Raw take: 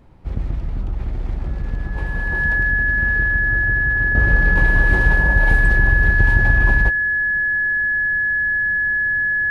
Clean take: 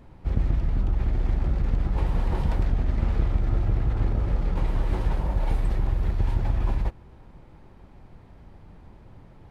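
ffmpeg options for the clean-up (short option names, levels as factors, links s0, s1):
-af "bandreject=f=1700:w=30,asetnsamples=n=441:p=0,asendcmd='4.15 volume volume -8dB',volume=1"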